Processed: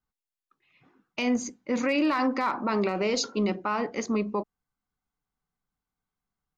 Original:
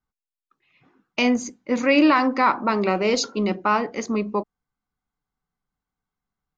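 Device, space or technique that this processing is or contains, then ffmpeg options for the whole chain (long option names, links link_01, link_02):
clipper into limiter: -af "asoftclip=type=hard:threshold=-8.5dB,alimiter=limit=-15dB:level=0:latency=1:release=36,volume=-2.5dB"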